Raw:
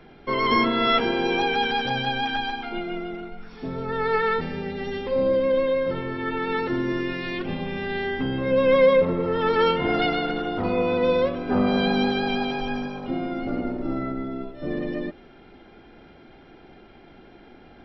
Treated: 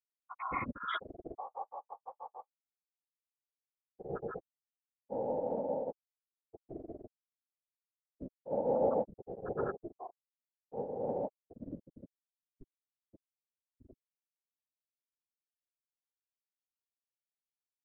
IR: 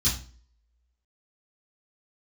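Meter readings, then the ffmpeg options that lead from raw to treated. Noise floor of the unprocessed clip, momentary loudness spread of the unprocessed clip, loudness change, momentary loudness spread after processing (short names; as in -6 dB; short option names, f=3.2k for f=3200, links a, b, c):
-49 dBFS, 11 LU, -14.5 dB, 17 LU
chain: -af "bandreject=f=50:t=h:w=6,bandreject=f=100:t=h:w=6,bandreject=f=150:t=h:w=6,bandreject=f=200:t=h:w=6,bandreject=f=250:t=h:w=6,bandreject=f=300:t=h:w=6,afftfilt=real='re*gte(hypot(re,im),0.562)':imag='im*gte(hypot(re,im),0.562)':win_size=1024:overlap=0.75,bandreject=f=840:w=27,tremolo=f=280:d=0.788,afftfilt=real='hypot(re,im)*cos(2*PI*random(0))':imag='hypot(re,im)*sin(2*PI*random(1))':win_size=512:overlap=0.75,volume=-3.5dB"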